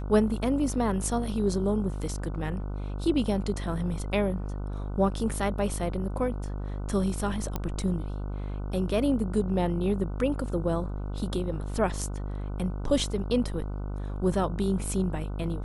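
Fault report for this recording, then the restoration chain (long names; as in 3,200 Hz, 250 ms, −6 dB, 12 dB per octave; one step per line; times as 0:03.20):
mains buzz 50 Hz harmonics 30 −33 dBFS
0:07.56: click −16 dBFS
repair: click removal
hum removal 50 Hz, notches 30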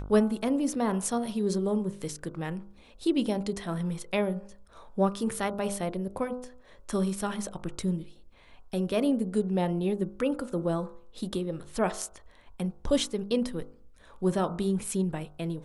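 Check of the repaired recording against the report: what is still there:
none of them is left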